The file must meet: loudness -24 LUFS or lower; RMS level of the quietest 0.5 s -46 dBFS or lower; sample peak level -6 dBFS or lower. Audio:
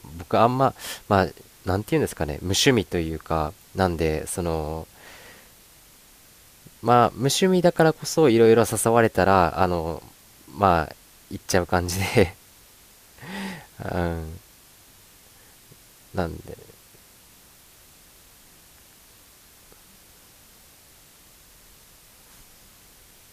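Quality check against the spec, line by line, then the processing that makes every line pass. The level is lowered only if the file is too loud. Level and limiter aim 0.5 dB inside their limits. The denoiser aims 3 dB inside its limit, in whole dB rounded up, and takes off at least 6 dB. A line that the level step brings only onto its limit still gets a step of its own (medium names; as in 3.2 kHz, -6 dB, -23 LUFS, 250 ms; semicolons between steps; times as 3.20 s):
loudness -22.0 LUFS: fail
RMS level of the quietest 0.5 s -52 dBFS: pass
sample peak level -3.5 dBFS: fail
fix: trim -2.5 dB; peak limiter -6.5 dBFS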